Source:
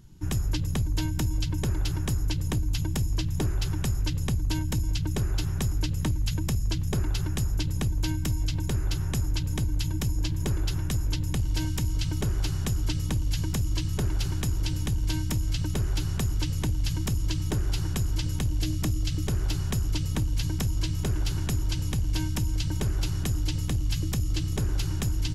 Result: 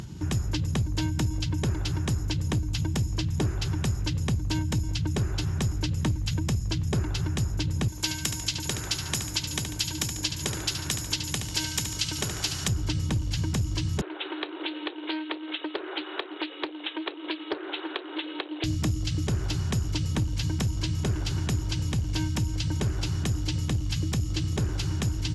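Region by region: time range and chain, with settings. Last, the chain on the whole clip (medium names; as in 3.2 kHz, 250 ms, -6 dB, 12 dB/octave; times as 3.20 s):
7.88–12.68 s: tilt EQ +3 dB/octave + feedback delay 72 ms, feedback 41%, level -8 dB
14.01–18.64 s: brick-wall FIR band-pass 290–3900 Hz + loudspeaker Doppler distortion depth 0.2 ms
whole clip: low-pass 7.9 kHz 12 dB/octave; upward compressor, threshold -27 dBFS; high-pass 67 Hz; trim +2 dB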